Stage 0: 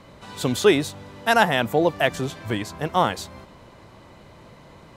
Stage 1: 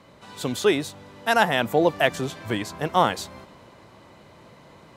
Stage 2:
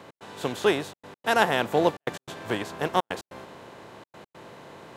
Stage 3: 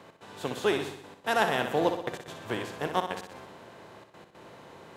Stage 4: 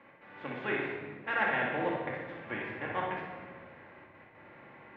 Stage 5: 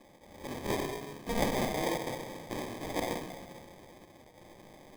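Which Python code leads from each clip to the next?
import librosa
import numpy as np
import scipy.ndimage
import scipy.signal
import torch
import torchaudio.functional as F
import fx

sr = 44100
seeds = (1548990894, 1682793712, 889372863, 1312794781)

y1 = fx.highpass(x, sr, hz=120.0, slope=6)
y1 = fx.rider(y1, sr, range_db=10, speed_s=2.0)
y1 = F.gain(torch.from_numpy(y1), -1.5).numpy()
y2 = fx.bin_compress(y1, sr, power=0.6)
y2 = fx.step_gate(y2, sr, bpm=145, pattern='x.xxxxxxx.', floor_db=-60.0, edge_ms=4.5)
y2 = fx.upward_expand(y2, sr, threshold_db=-30.0, expansion=1.5)
y2 = F.gain(torch.from_numpy(y2), -3.5).numpy()
y3 = fx.echo_feedback(y2, sr, ms=62, feedback_pct=57, wet_db=-8.0)
y3 = F.gain(torch.from_numpy(y3), -4.5).numpy()
y4 = fx.ladder_lowpass(y3, sr, hz=2400.0, resonance_pct=60)
y4 = fx.room_shoebox(y4, sr, seeds[0], volume_m3=1100.0, walls='mixed', distance_m=2.3)
y5 = fx.sample_hold(y4, sr, seeds[1], rate_hz=1400.0, jitter_pct=0)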